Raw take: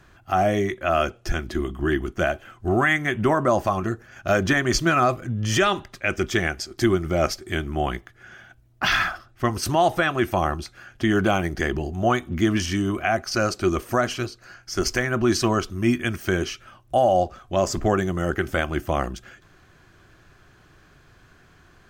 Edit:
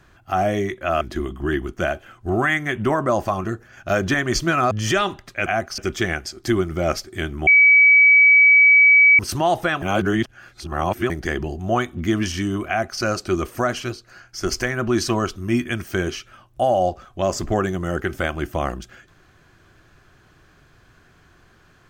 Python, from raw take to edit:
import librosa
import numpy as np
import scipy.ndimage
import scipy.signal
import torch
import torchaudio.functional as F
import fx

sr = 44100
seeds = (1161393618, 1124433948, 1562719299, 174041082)

y = fx.edit(x, sr, fx.cut(start_s=1.01, length_s=0.39),
    fx.cut(start_s=5.1, length_s=0.27),
    fx.bleep(start_s=7.81, length_s=1.72, hz=2280.0, db=-8.5),
    fx.reverse_span(start_s=10.16, length_s=1.28),
    fx.duplicate(start_s=13.02, length_s=0.32, to_s=6.12), tone=tone)